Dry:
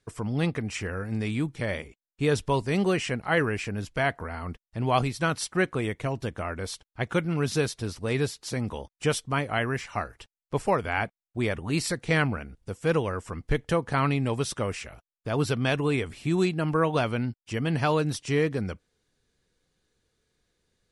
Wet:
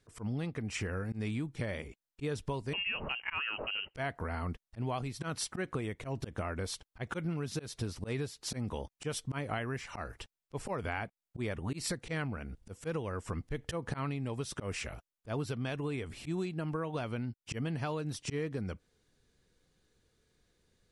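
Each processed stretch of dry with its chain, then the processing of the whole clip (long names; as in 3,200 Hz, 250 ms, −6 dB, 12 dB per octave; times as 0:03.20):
0:02.73–0:03.95: high-pass filter 140 Hz + voice inversion scrambler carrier 3,000 Hz
whole clip: low-shelf EQ 440 Hz +3 dB; volume swells 155 ms; downward compressor 12 to 1, threshold −32 dBFS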